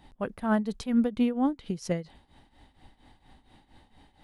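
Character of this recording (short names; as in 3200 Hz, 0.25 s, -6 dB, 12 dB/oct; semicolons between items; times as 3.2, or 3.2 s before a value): tremolo triangle 4.3 Hz, depth 85%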